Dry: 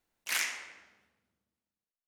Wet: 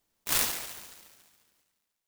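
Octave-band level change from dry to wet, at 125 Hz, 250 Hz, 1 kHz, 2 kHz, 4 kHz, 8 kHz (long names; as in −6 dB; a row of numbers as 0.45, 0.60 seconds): can't be measured, +14.0 dB, +6.0 dB, −3.0 dB, +4.0 dB, +6.0 dB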